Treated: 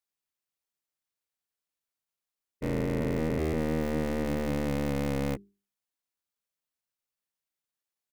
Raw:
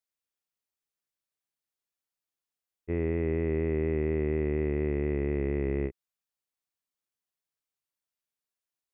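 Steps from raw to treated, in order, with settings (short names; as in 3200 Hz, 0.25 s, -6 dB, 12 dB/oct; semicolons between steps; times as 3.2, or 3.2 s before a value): cycle switcher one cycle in 3, inverted; notches 50/100/150/200/250/300/350/400 Hz; tempo 1.1×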